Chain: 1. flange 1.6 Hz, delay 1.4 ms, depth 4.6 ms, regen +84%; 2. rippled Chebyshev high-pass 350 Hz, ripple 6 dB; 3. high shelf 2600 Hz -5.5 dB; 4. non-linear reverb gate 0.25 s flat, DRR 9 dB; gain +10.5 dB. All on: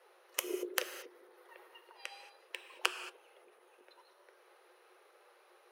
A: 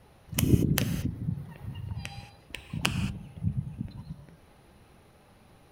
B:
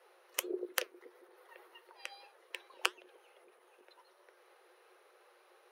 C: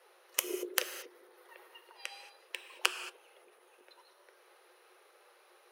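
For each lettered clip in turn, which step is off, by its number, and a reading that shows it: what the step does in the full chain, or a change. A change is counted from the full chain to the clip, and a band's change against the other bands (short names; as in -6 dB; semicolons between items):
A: 2, 250 Hz band +15.5 dB; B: 4, momentary loudness spread change +1 LU; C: 3, 8 kHz band +4.0 dB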